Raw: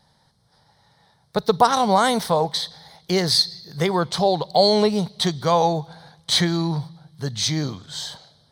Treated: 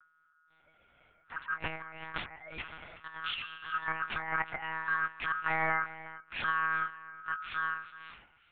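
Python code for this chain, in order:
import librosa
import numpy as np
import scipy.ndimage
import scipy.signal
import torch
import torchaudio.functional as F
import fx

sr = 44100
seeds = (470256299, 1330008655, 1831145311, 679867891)

y = fx.doppler_pass(x, sr, speed_mps=9, closest_m=9.3, pass_at_s=2.42)
y = fx.notch(y, sr, hz=990.0, q=7.7)
y = fx.spec_paint(y, sr, seeds[0], shape='rise', start_s=2.36, length_s=0.23, low_hz=530.0, high_hz=1100.0, level_db=-18.0)
y = fx.tilt_eq(y, sr, slope=-2.0)
y = fx.over_compress(y, sr, threshold_db=-27.0, ratio=-0.5)
y = fx.add_hum(y, sr, base_hz=50, snr_db=15)
y = y * np.sin(2.0 * np.pi * 1400.0 * np.arange(len(y)) / sr)
y = fx.noise_reduce_blind(y, sr, reduce_db=18)
y = y + 10.0 ** (-16.0 / 20.0) * np.pad(y, (int(369 * sr / 1000.0), 0))[:len(y)]
y = fx.lpc_monotone(y, sr, seeds[1], pitch_hz=160.0, order=10)
y = F.gain(torch.from_numpy(y), -3.5).numpy()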